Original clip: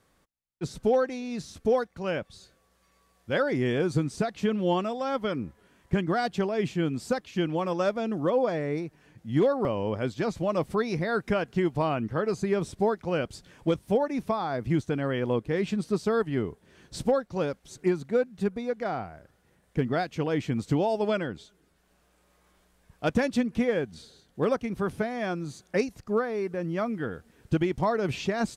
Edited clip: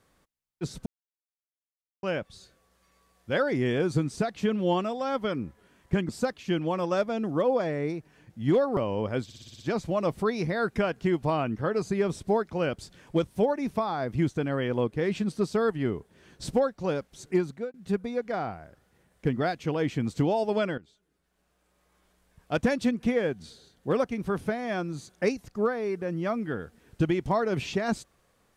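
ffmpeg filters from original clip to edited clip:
-filter_complex "[0:a]asplit=12[a][b][c][d][e][f][g][h][i][j][k][l];[a]atrim=end=0.86,asetpts=PTS-STARTPTS,afade=t=out:st=0.856:d=0.004:c=hsin[m];[b]atrim=start=0.86:end=2.03,asetpts=PTS-STARTPTS,volume=0[n];[c]atrim=start=2.03:end=6.092,asetpts=PTS-STARTPTS,afade=t=in:d=0.004:c=hsin[o];[d]atrim=start=6.968:end=10.182[p];[e]atrim=start=10.118:end=10.182[q];[f]atrim=start=10.118:end=10.182[r];[g]atrim=start=10.118:end=10.182[s];[h]atrim=start=10.118:end=10.182[t];[i]atrim=start=10.118:end=10.182[u];[j]atrim=start=10.118:end=18.26,asetpts=PTS-STARTPTS,afade=t=out:st=7.862:d=0.28[v];[k]atrim=start=18.26:end=21.3,asetpts=PTS-STARTPTS,afade=t=in:d=0.004:c=hsin,afade=t=out:st=3.036:d=0.004:c=hsin:silence=0.177828[w];[l]atrim=start=21.3,asetpts=PTS-STARTPTS,afade=t=in:d=1.9:silence=0.177828[x];[m][n][o]concat=n=3:v=0:a=1[y];[y][p]acrossfade=d=0.004:c1=hsin:c2=hsin[z];[z][q]acrossfade=d=0.004:c1=hsin:c2=hsin[aa];[aa][r]acrossfade=d=0.004:c1=hsin:c2=hsin[ab];[ab][s]acrossfade=d=0.004:c1=hsin:c2=hsin[ac];[ac][t]acrossfade=d=0.004:c1=hsin:c2=hsin[ad];[ad][u]acrossfade=d=0.004:c1=hsin:c2=hsin[ae];[v][w][x]concat=n=3:v=0:a=1[af];[ae][af]acrossfade=d=0.004:c1=hsin:c2=hsin"

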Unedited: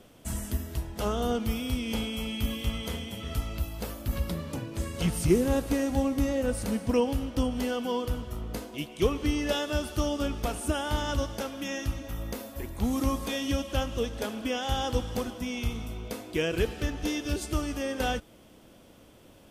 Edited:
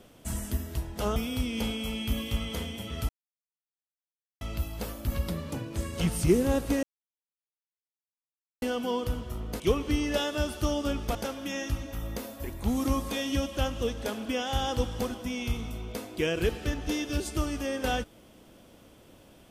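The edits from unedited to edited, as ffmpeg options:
-filter_complex "[0:a]asplit=7[a][b][c][d][e][f][g];[a]atrim=end=1.162[h];[b]atrim=start=1.488:end=3.42,asetpts=PTS-STARTPTS,afade=t=out:st=1.928:d=0.004:c=hsin,apad=pad_dur=1.32[i];[c]atrim=start=3.42:end=5.84,asetpts=PTS-STARTPTS,afade=t=in:d=0.004:c=hsin,afade=t=out:st=2.416:d=0.004:c=hsin[j];[d]atrim=start=5.84:end=7.63,asetpts=PTS-STARTPTS,volume=0[k];[e]atrim=start=7.63:end=8.612,asetpts=PTS-STARTPTS,afade=t=in:d=0.004:c=hsin[l];[f]atrim=start=8.948:end=10.502[m];[g]atrim=start=11.308[n];[i][j][k][l]concat=n=4:v=0:a=1[o];[h][o]acrossfade=d=0.004:c1=hsin:c2=hsin[p];[p][m]acrossfade=d=0.004:c1=hsin:c2=hsin[q];[q][n]acrossfade=d=0.004:c1=hsin:c2=hsin"

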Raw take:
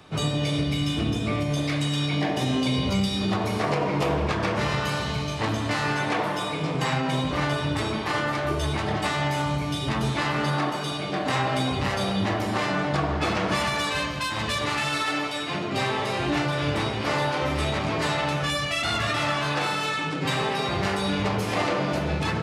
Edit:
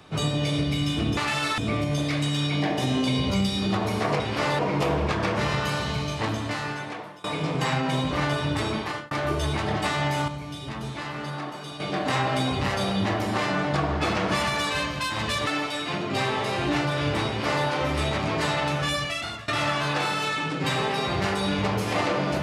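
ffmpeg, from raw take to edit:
-filter_complex "[0:a]asplit=11[a][b][c][d][e][f][g][h][i][j][k];[a]atrim=end=1.172[l];[b]atrim=start=14.668:end=15.082[m];[c]atrim=start=1.168:end=3.792[n];[d]atrim=start=16.878:end=17.272[o];[e]atrim=start=3.788:end=6.44,asetpts=PTS-STARTPTS,afade=t=out:st=1.532:d=1.12:silence=0.0668344[p];[f]atrim=start=6.44:end=8.31,asetpts=PTS-STARTPTS,afade=t=in:d=0.004:c=hsin:silence=0.0668344,afade=t=out:st=1.54:d=0.33[q];[g]atrim=start=8.31:end=9.482,asetpts=PTS-STARTPTS,afade=t=in:d=0.004:c=hsin[r];[h]atrim=start=9.478:end=11.002,asetpts=PTS-STARTPTS,volume=-8dB[s];[i]atrim=start=10.998:end=14.672[t];[j]atrim=start=15.078:end=19.09,asetpts=PTS-STARTPTS,afade=t=out:st=3.502:d=0.51:silence=0.0841395[u];[k]atrim=start=19.09,asetpts=PTS-STARTPTS,afade=t=in:d=0.004:c=hsin:silence=0.0841395[v];[l][m]acrossfade=d=0.004:c1=hsin:c2=hsin[w];[w][n]acrossfade=d=0.004:c1=hsin:c2=hsin[x];[x][o]acrossfade=d=0.004:c1=hsin:c2=hsin[y];[p][q][r]concat=n=3:v=0:a=1[z];[y][z]acrossfade=d=0.004:c1=hsin:c2=hsin[aa];[aa][s]acrossfade=d=0.004:c1=hsin:c2=hsin[ab];[ab][t]acrossfade=d=0.004:c1=hsin:c2=hsin[ac];[u][v]concat=n=2:v=0:a=1[ad];[ac][ad]acrossfade=d=0.004:c1=hsin:c2=hsin"

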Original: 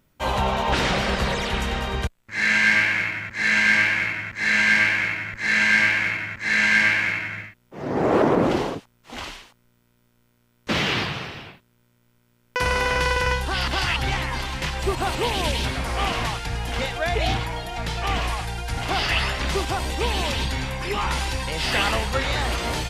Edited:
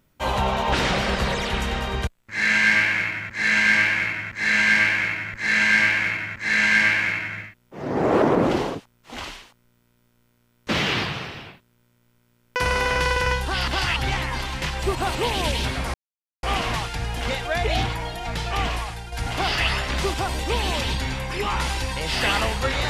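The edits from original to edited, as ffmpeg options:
-filter_complex "[0:a]asplit=3[a][b][c];[a]atrim=end=15.94,asetpts=PTS-STARTPTS,afade=t=out:st=15.936:d=0.004:c=hsin,apad=pad_dur=0.49[d];[b]atrim=start=15.94:end=18.63,asetpts=PTS-STARTPTS,afade=t=in:d=0.004:c=hsin,afade=t=out:st=2.19:d=0.5:silence=0.398107[e];[c]atrim=start=18.63,asetpts=PTS-STARTPTS,afade=t=in:d=0.004:c=hsin:silence=0.398107[f];[d][e][f]concat=n=3:v=0:a=1"

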